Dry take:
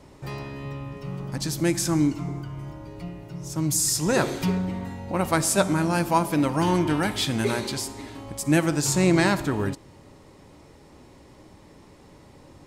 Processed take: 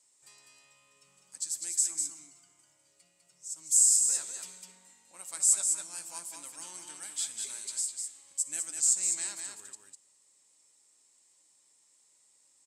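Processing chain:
resonant band-pass 7,900 Hz, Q 6.5
single-tap delay 201 ms −5 dB
level +7 dB

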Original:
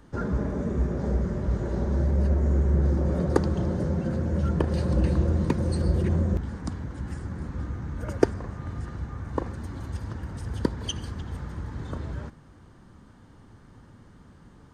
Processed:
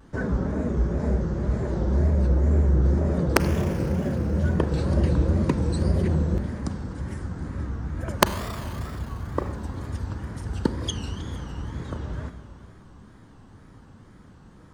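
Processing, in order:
wrap-around overflow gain 4.5 dB
four-comb reverb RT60 3 s, combs from 30 ms, DRR 9 dB
tape wow and flutter 140 cents
level +1.5 dB

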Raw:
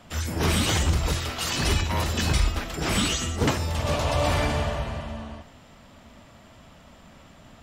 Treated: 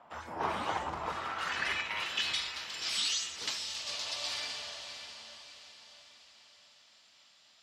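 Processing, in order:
band-pass filter sweep 920 Hz → 4,600 Hz, 0:00.96–0:02.63
feedback delay with all-pass diffusion 621 ms, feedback 46%, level −10 dB
level +1.5 dB

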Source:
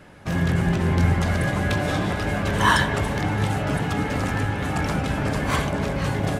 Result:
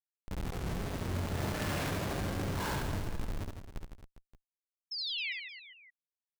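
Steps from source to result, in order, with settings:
source passing by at 0:01.73, 18 m/s, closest 1.1 metres
in parallel at −1 dB: downward compressor, threshold −40 dBFS, peak gain reduction 17.5 dB
on the sum: comparator with hysteresis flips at −38.5 dBFS
sound drawn into the spectrogram fall, 0:04.91–0:05.33, 1,900–5,400 Hz −38 dBFS
reverse bouncing-ball delay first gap 70 ms, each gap 1.25×, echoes 5

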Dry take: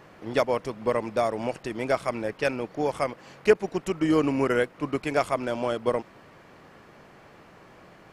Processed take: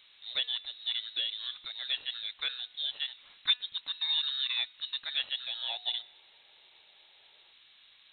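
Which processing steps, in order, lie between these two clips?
hum removal 252 Hz, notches 39
voice inversion scrambler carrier 4,000 Hz
gain on a spectral selection 0:05.63–0:07.53, 330–990 Hz +9 dB
level −9 dB

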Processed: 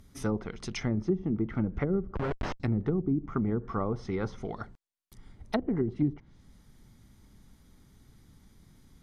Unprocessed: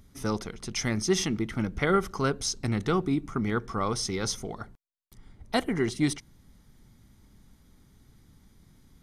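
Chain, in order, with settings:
0:02.15–0:02.60: comparator with hysteresis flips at −29 dBFS
treble cut that deepens with the level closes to 310 Hz, closed at −22 dBFS

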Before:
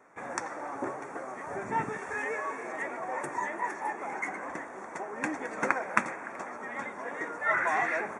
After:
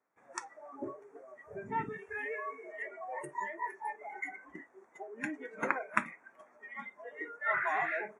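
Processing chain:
noise reduction from a noise print of the clip's start 20 dB
level −4 dB

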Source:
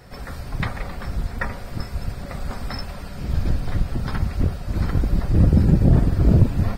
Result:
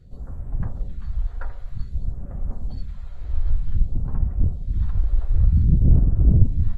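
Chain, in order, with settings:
formants moved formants −3 semitones
all-pass phaser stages 2, 0.53 Hz, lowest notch 170–4,000 Hz
spectral tilt −3 dB per octave
level −12.5 dB

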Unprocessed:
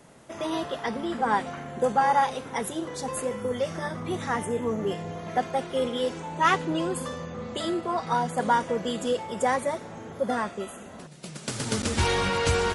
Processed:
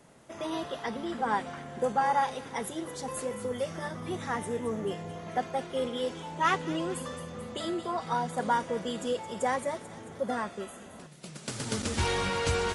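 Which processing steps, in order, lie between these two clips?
delay with a high-pass on its return 220 ms, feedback 56%, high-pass 2,600 Hz, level −10 dB
level −4.5 dB

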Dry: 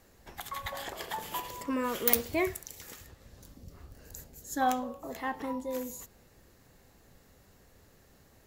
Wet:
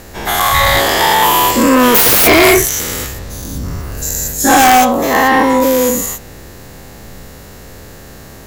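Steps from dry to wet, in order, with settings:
every bin's largest magnitude spread in time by 240 ms
sine wavefolder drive 19 dB, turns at −1 dBFS
level −2.5 dB

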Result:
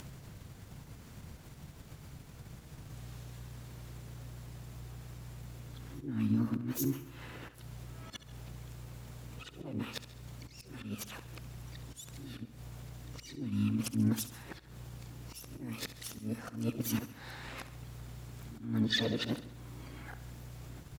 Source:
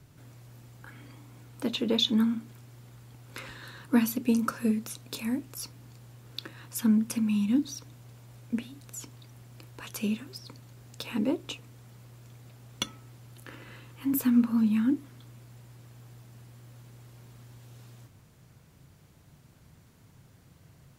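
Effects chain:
played backwards from end to start
in parallel at −2 dB: output level in coarse steps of 19 dB
on the sum: volume swells 244 ms
upward compression, threshold −32 dBFS
single-tap delay 156 ms −22 dB
pitch-shifted copies added −12 semitones −4 dB, +4 semitones −8 dB, +7 semitones −17 dB
on a send: repeating echo 68 ms, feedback 52%, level −13.5 dB
on the sum: level −8.5 dB

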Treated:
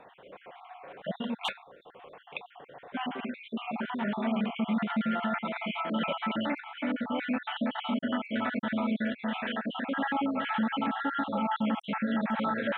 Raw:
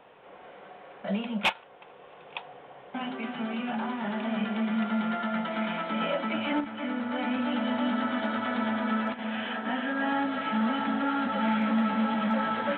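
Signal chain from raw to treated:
time-frequency cells dropped at random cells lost 50%
brickwall limiter −23 dBFS, peak gain reduction 7 dB
level +2 dB

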